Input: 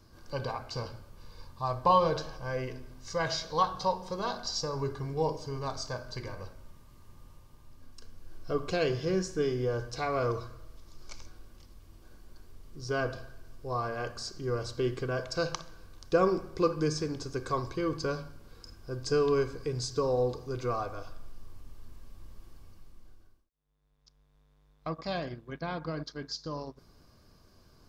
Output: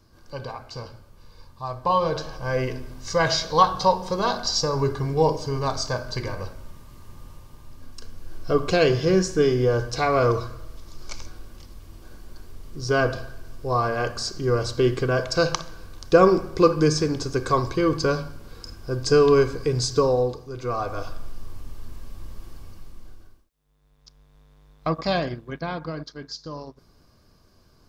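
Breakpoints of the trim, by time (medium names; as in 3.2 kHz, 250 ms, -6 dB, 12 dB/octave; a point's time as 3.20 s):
1.81 s +0.5 dB
2.61 s +10 dB
20.00 s +10 dB
20.51 s 0 dB
21.01 s +11 dB
25.08 s +11 dB
26.12 s +2 dB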